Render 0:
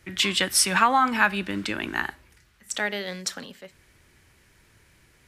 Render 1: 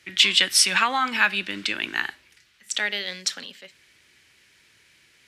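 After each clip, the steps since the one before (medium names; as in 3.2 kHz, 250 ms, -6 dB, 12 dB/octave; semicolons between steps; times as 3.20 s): frequency weighting D; trim -4.5 dB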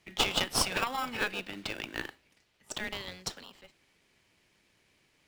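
valve stage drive 8 dB, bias 0.75; in parallel at -4 dB: sample-and-hold 21×; on the sum: trim -8 dB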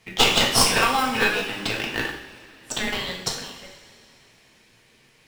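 two-slope reverb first 0.61 s, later 3.3 s, from -18 dB, DRR -1 dB; trim +8 dB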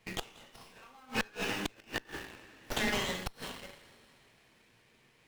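in parallel at -5 dB: word length cut 6-bit, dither none; on the sum: inverted gate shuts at -8 dBFS, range -31 dB; sliding maximum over 5 samples; trim -7.5 dB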